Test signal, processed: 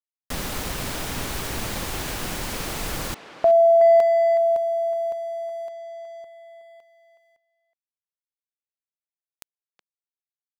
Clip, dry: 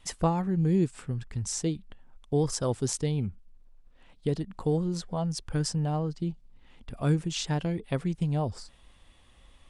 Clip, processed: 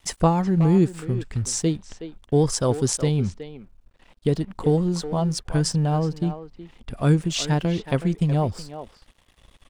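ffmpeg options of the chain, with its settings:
-filter_complex "[0:a]aeval=exprs='sgn(val(0))*max(abs(val(0))-0.00141,0)':c=same,asplit=2[s0][s1];[s1]adelay=370,highpass=300,lowpass=3400,asoftclip=type=hard:threshold=0.0794,volume=0.316[s2];[s0][s2]amix=inputs=2:normalize=0,volume=2.24"

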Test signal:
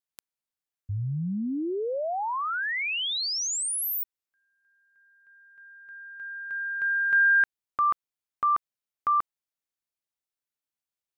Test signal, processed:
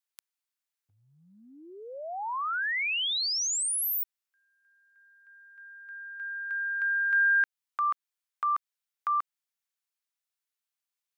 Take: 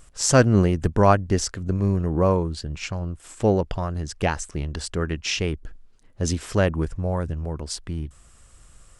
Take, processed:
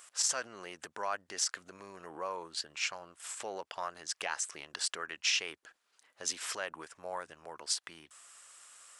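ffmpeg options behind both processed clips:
-filter_complex "[0:a]asplit=2[s0][s1];[s1]acompressor=threshold=0.0251:ratio=6:attack=10:release=359:knee=1:detection=peak,volume=1.12[s2];[s0][s2]amix=inputs=2:normalize=0,alimiter=limit=0.2:level=0:latency=1:release=50,highpass=1000,volume=0.596"

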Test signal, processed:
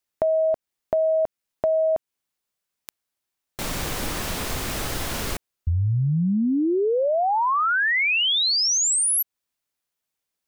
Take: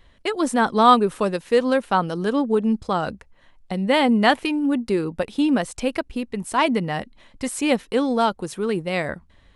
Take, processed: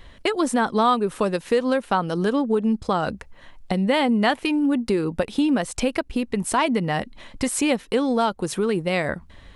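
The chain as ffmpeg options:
-af "acompressor=threshold=0.0282:ratio=2.5,volume=2.66"

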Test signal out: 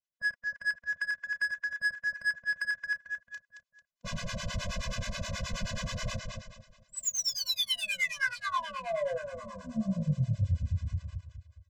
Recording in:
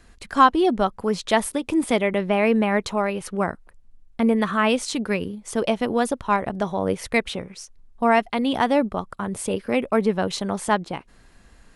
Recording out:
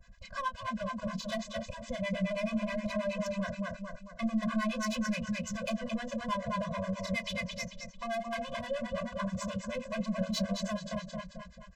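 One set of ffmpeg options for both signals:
-filter_complex "[0:a]dynaudnorm=f=610:g=5:m=1.68,aecho=1:1:222|444|666|888|1110:0.447|0.179|0.0715|0.0286|0.0114,acompressor=threshold=0.126:ratio=8,aresample=16000,acrusher=bits=5:mode=log:mix=0:aa=0.000001,aresample=44100,asoftclip=type=tanh:threshold=0.075,asplit=2[s0][s1];[s1]adelay=32,volume=0.447[s2];[s0][s2]amix=inputs=2:normalize=0,acrossover=split=690[s3][s4];[s3]aeval=exprs='val(0)*(1-1/2+1/2*cos(2*PI*9.4*n/s))':c=same[s5];[s4]aeval=exprs='val(0)*(1-1/2-1/2*cos(2*PI*9.4*n/s))':c=same[s6];[s5][s6]amix=inputs=2:normalize=0,afftfilt=real='re*eq(mod(floor(b*sr/1024/240),2),0)':imag='im*eq(mod(floor(b*sr/1024/240),2),0)':win_size=1024:overlap=0.75"

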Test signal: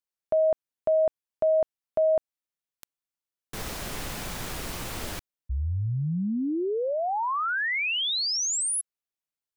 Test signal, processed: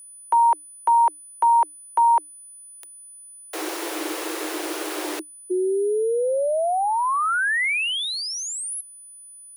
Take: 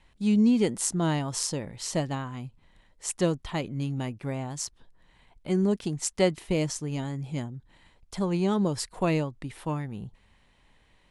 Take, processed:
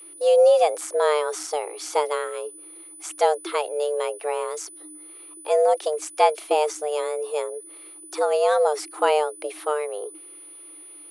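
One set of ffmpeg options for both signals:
-filter_complex "[0:a]afreqshift=300,acrossover=split=2600[s0][s1];[s1]acompressor=threshold=0.0158:ratio=4:attack=1:release=60[s2];[s0][s2]amix=inputs=2:normalize=0,aeval=exprs='val(0)+0.00447*sin(2*PI*9900*n/s)':c=same,volume=1.88"

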